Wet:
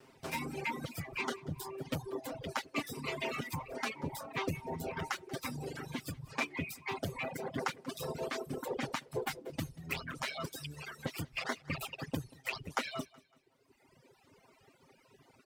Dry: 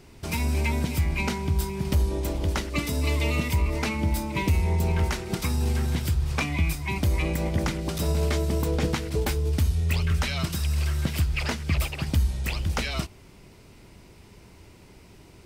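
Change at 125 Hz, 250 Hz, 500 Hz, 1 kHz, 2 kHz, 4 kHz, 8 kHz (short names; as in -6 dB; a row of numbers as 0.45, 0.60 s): -19.5, -12.0, -8.5, -5.5, -7.0, -9.5, -11.0 dB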